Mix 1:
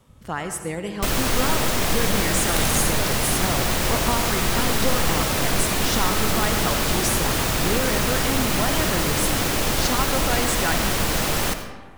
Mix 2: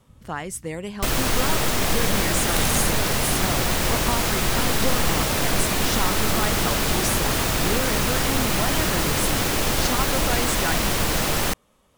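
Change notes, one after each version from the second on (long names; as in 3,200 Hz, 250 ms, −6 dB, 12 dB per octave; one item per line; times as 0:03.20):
speech: send off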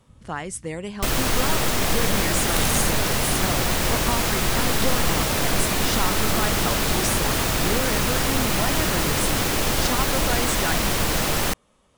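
speech: add Butterworth low-pass 11,000 Hz 96 dB per octave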